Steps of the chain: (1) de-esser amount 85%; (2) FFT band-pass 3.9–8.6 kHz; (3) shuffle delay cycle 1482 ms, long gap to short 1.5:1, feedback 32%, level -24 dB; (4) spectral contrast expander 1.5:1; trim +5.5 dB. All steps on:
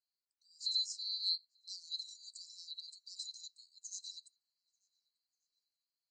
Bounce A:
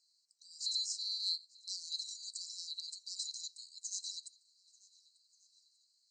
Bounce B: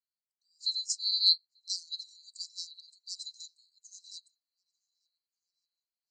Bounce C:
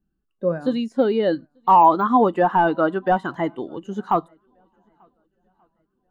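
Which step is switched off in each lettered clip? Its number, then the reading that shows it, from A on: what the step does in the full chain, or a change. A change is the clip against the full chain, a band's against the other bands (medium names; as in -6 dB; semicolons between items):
4, momentary loudness spread change -5 LU; 1, crest factor change +4.5 dB; 2, crest factor change -5.0 dB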